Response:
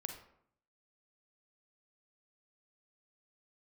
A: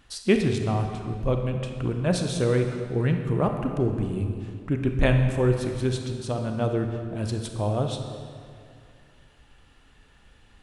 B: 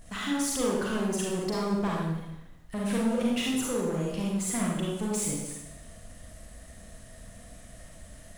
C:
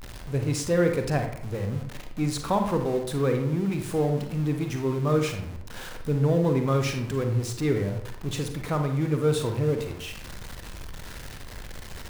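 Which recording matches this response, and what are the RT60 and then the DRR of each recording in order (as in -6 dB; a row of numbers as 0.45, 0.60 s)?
C; 2.4, 0.90, 0.65 s; 4.5, -4.0, 4.5 dB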